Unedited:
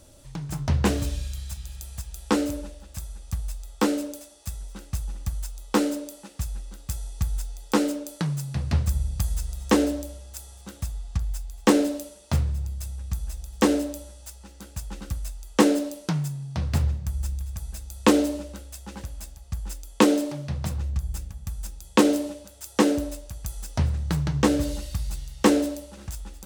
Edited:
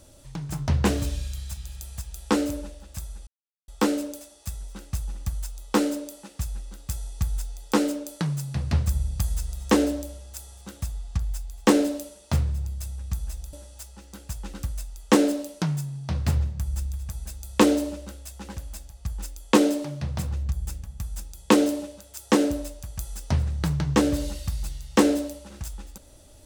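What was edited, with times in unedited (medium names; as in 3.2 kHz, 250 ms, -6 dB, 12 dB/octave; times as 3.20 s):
3.27–3.68 s: mute
13.53–14.00 s: delete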